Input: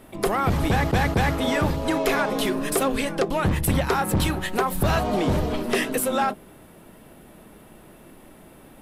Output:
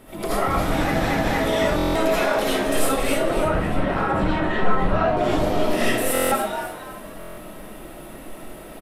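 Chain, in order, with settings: 3.09–5.17 LPF 2100 Hz 12 dB/oct; limiter -23 dBFS, peak gain reduction 9.5 dB; frequency-shifting echo 0.275 s, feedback 34%, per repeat +110 Hz, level -8 dB; reverb RT60 0.50 s, pre-delay 40 ms, DRR -8.5 dB; stuck buffer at 1.77/6.13/7.19, samples 1024, times 7

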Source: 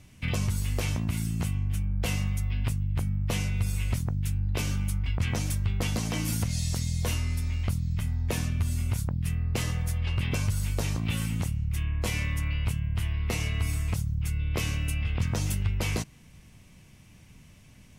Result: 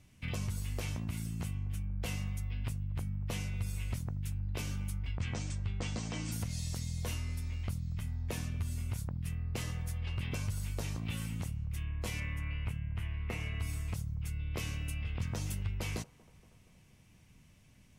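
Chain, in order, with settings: 5.12–6.32 steep low-pass 8700 Hz 96 dB/oct; 12.2–13.6 resonant high shelf 3200 Hz -7.5 dB, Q 1.5; band-limited delay 0.236 s, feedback 63%, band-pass 680 Hz, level -20.5 dB; gain -8.5 dB

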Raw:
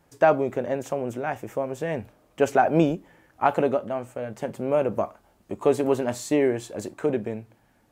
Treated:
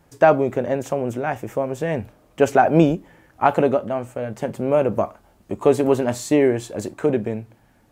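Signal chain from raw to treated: low shelf 180 Hz +4.5 dB; gain +4 dB

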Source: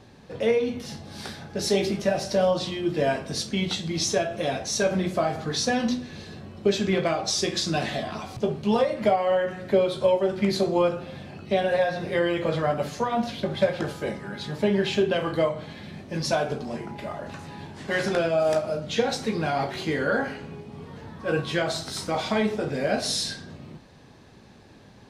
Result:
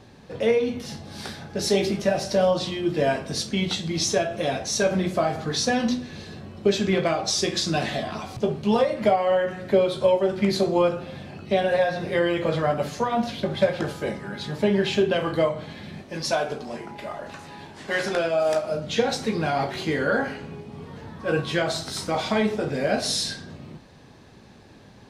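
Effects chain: 16.02–18.71 bell 110 Hz -8 dB 2.7 oct; gain +1.5 dB

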